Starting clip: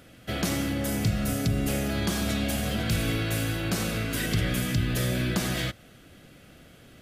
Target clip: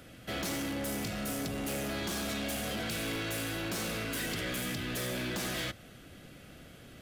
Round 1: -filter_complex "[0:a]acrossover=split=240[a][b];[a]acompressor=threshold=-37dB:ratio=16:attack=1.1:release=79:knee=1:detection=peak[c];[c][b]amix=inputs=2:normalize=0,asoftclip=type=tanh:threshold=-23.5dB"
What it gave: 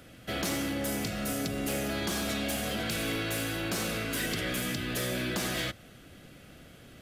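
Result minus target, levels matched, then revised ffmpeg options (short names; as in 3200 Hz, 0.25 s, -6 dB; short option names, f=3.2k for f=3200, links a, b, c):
soft clip: distortion -9 dB
-filter_complex "[0:a]acrossover=split=240[a][b];[a]acompressor=threshold=-37dB:ratio=16:attack=1.1:release=79:knee=1:detection=peak[c];[c][b]amix=inputs=2:normalize=0,asoftclip=type=tanh:threshold=-31.5dB"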